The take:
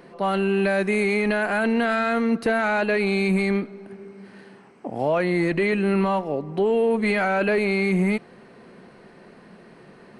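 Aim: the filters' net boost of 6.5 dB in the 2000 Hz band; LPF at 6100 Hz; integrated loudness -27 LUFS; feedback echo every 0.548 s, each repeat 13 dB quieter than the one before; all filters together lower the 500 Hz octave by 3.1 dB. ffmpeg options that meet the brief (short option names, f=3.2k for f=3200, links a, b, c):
-af "lowpass=6.1k,equalizer=f=500:t=o:g=-4.5,equalizer=f=2k:t=o:g=8.5,aecho=1:1:548|1096|1644:0.224|0.0493|0.0108,volume=-6.5dB"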